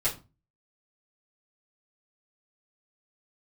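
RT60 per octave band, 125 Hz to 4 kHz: 0.50, 0.40, 0.30, 0.30, 0.25, 0.25 s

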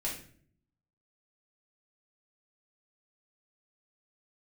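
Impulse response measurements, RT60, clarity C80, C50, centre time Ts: 0.50 s, 10.5 dB, 6.0 dB, 31 ms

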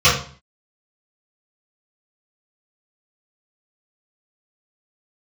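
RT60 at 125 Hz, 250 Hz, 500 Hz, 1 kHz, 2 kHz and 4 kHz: 0.55, 0.55, 0.40, 0.45, 0.40, 0.40 s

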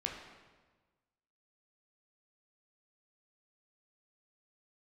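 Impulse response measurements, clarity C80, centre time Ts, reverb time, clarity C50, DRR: 6.0 dB, 47 ms, 1.3 s, 4.0 dB, 0.0 dB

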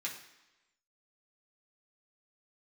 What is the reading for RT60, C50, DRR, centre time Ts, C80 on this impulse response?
1.0 s, 7.5 dB, -4.0 dB, 26 ms, 10.5 dB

